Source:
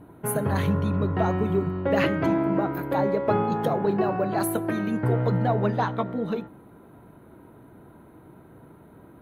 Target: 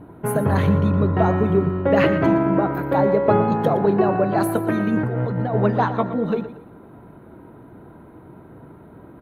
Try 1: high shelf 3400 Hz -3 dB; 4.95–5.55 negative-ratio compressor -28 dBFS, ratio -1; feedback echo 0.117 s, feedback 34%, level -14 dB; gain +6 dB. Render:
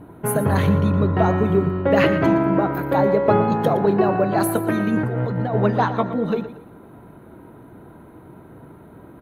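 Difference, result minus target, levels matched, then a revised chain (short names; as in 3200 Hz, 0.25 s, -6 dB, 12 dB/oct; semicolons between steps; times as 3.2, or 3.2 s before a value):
8000 Hz band +6.0 dB
high shelf 3400 Hz -9.5 dB; 4.95–5.55 negative-ratio compressor -28 dBFS, ratio -1; feedback echo 0.117 s, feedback 34%, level -14 dB; gain +6 dB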